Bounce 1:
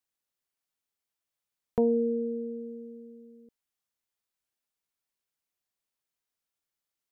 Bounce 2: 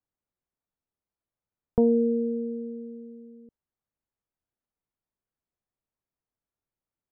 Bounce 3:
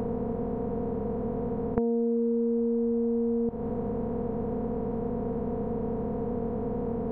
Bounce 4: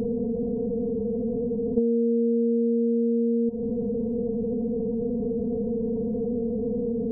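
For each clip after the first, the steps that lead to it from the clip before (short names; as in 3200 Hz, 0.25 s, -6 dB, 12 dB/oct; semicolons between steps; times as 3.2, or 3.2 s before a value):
Bessel low-pass 1000 Hz, order 2; low shelf 200 Hz +8 dB; gain +2 dB
per-bin compression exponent 0.2; compressor 6:1, threshold -30 dBFS, peak gain reduction 13.5 dB; gain +5.5 dB
spectral contrast raised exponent 2.4; gain +4 dB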